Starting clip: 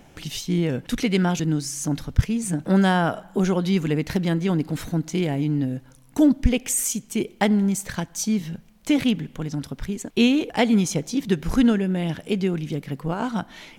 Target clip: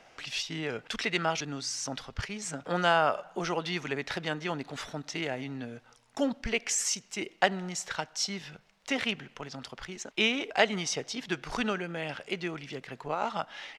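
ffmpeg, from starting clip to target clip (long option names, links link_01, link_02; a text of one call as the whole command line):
ffmpeg -i in.wav -filter_complex "[0:a]asetrate=40440,aresample=44100,atempo=1.09051,acrossover=split=490 6900:gain=0.112 1 0.1[link_01][link_02][link_03];[link_01][link_02][link_03]amix=inputs=3:normalize=0" out.wav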